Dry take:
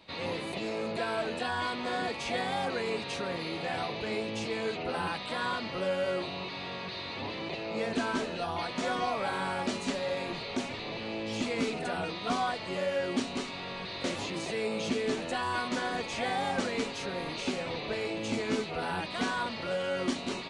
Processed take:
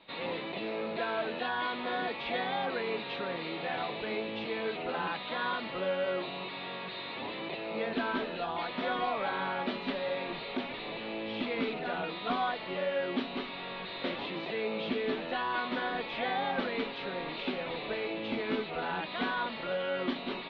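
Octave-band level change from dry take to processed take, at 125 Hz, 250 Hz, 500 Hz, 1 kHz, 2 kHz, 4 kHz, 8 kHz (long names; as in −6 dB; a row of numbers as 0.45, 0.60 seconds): −5.5 dB, −2.5 dB, −1.0 dB, −0.5 dB, −0.5 dB, −2.0 dB, below −30 dB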